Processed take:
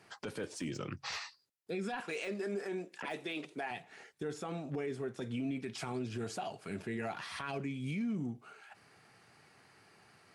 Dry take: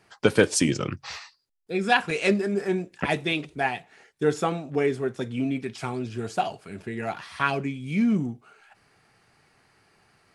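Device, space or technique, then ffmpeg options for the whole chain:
podcast mastering chain: -filter_complex "[0:a]asettb=1/sr,asplit=3[link_01][link_02][link_03];[link_01]atrim=end=2.004[link_04];[link_02]atrim=start=2:end=3.71,asetpts=PTS-STARTPTS,afade=type=in:duration=0.004:curve=qsin,afade=type=out:start_time=1.706:duration=0.004:curve=qsin,highpass=290[link_05];[link_03]atrim=start=3.706[link_06];[link_04][link_05]acrossfade=duration=0.004:curve1=hsin:curve2=qsin[link_07];[link_07][link_06]acrossfade=duration=0.004:curve1=qsin:curve2=hsin,highpass=94,deesser=0.8,acompressor=threshold=-34dB:ratio=3,alimiter=level_in=5.5dB:limit=-24dB:level=0:latency=1:release=18,volume=-5.5dB" -ar 44100 -c:a libmp3lame -b:a 96k

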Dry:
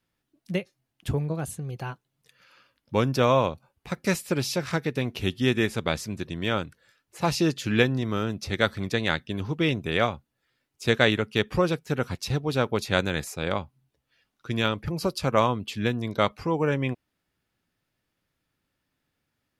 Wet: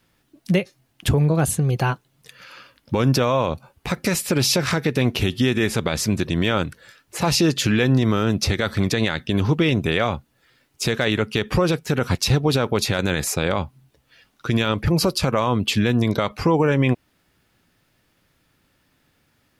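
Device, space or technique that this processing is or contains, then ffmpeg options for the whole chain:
loud club master: -af "acompressor=threshold=-30dB:ratio=1.5,asoftclip=type=hard:threshold=-12dB,alimiter=level_in=23dB:limit=-1dB:release=50:level=0:latency=1,volume=-8.5dB"

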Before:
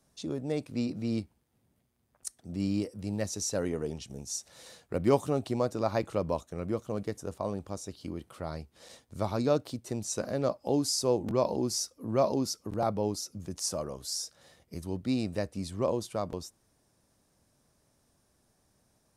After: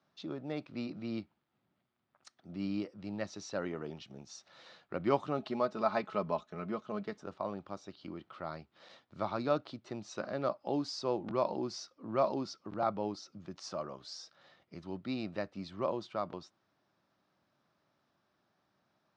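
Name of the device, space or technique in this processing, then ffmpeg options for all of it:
kitchen radio: -filter_complex "[0:a]asettb=1/sr,asplit=3[link_01][link_02][link_03];[link_01]atrim=end=5.384[link_04];[link_02]atrim=start=5.38:end=7.24,asetpts=PTS-STARTPTS,afade=type=in:duration=0.004:curve=qsin,afade=type=out:start_time=1.856:duration=0.004:curve=qsin,aecho=1:1:4.7:0.61,atrim=end_sample=82026[link_05];[link_03]atrim=start=7.236[link_06];[link_04][link_05]acrossfade=duration=0.004:curve1=hsin:curve2=qsin[link_07];[link_07][link_06]acrossfade=duration=0.004:curve1=qsin:curve2=hsin,highpass=190,equalizer=frequency=250:width_type=q:width=4:gain=-5,equalizer=frequency=460:width_type=q:width=4:gain=-8,equalizer=frequency=1300:width_type=q:width=4:gain=6,lowpass=frequency=4200:width=0.5412,lowpass=frequency=4200:width=1.3066,volume=-2dB"

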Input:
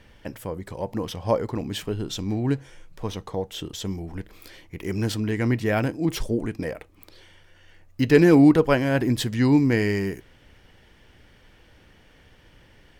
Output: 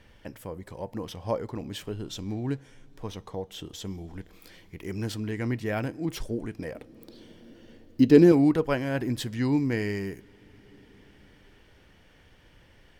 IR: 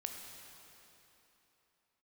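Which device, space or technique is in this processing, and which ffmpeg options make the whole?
ducked reverb: -filter_complex "[0:a]asplit=3[link_01][link_02][link_03];[1:a]atrim=start_sample=2205[link_04];[link_02][link_04]afir=irnorm=-1:irlink=0[link_05];[link_03]apad=whole_len=573224[link_06];[link_05][link_06]sidechaincompress=threshold=-43dB:ratio=4:attack=16:release=766,volume=-3dB[link_07];[link_01][link_07]amix=inputs=2:normalize=0,asettb=1/sr,asplit=3[link_08][link_09][link_10];[link_08]atrim=end=6.754[link_11];[link_09]atrim=start=6.75:end=8.32,asetpts=PTS-STARTPTS,afade=type=in:duration=0.004:curve=qsin,afade=type=out:start_time=1.566:duration=0.004:curve=qsin,equalizer=frequency=250:width_type=o:width=1:gain=11,equalizer=frequency=500:width_type=o:width=1:gain=3,equalizer=frequency=2000:width_type=o:width=1:gain=-5,equalizer=frequency=4000:width_type=o:width=1:gain=4[link_12];[link_10]atrim=start=8.316[link_13];[link_11][link_12]acrossfade=duration=0.004:curve1=hsin:curve2=qsin[link_14];[link_14][link_13]acrossfade=duration=0.004:curve1=qsin:curve2=hsin,volume=-7dB"

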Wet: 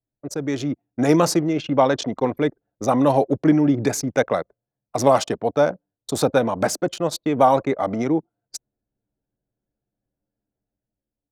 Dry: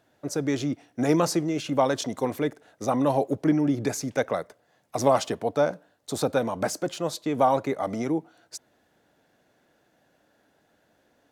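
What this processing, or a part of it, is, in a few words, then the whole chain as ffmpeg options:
voice memo with heavy noise removal: -filter_complex "[0:a]asettb=1/sr,asplit=3[link_01][link_02][link_03];[link_01]atrim=end=1.534[link_04];[link_02]atrim=start=1.53:end=2.37,asetpts=PTS-STARTPTS,afade=type=in:duration=0.004:curve=qsin,afade=type=out:start_time=0.836:duration=0.004:curve=qsin,lowpass=5100[link_05];[link_03]atrim=start=2.366[link_06];[link_04][link_05]acrossfade=duration=0.004:curve1=hsin:curve2=qsin[link_07];[link_07][link_06]acrossfade=duration=0.004:curve1=qsin:curve2=hsin,anlmdn=2.51,dynaudnorm=framelen=130:gausssize=11:maxgain=6.5dB"

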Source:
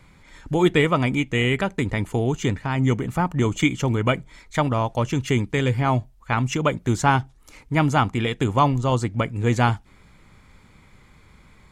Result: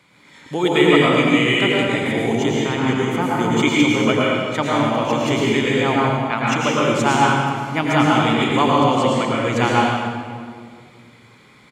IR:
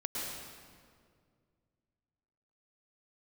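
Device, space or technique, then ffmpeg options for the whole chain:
PA in a hall: -filter_complex "[0:a]highpass=200,equalizer=frequency=3300:width_type=o:width=1.1:gain=5,aecho=1:1:88:0.299[link_01];[1:a]atrim=start_sample=2205[link_02];[link_01][link_02]afir=irnorm=-1:irlink=0,volume=1dB"

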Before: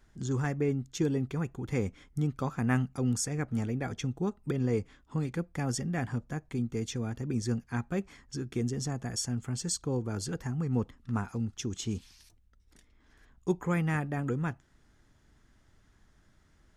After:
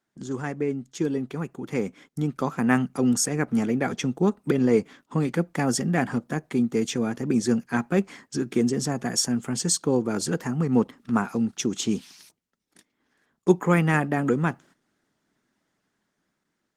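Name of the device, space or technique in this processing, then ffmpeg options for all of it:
video call: -af "highpass=frequency=170:width=0.5412,highpass=frequency=170:width=1.3066,dynaudnorm=framelen=980:gausssize=5:maxgain=7.5dB,agate=range=-13dB:threshold=-53dB:ratio=16:detection=peak,volume=3.5dB" -ar 48000 -c:a libopus -b:a 20k

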